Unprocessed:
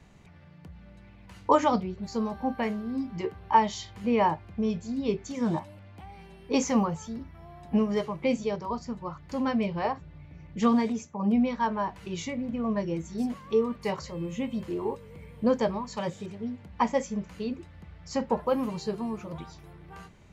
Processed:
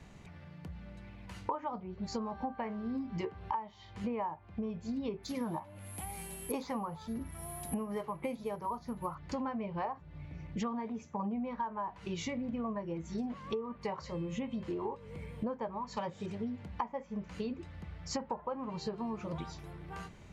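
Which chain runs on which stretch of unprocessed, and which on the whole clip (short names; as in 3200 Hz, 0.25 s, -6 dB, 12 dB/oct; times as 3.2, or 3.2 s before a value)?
5.23–9.15 high shelf 3500 Hz +6.5 dB + careless resampling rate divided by 4×, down none, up zero stuff
whole clip: treble ducked by the level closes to 2400 Hz, closed at -24.5 dBFS; dynamic EQ 940 Hz, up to +8 dB, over -42 dBFS, Q 1.3; compressor 16:1, threshold -35 dBFS; gain +1.5 dB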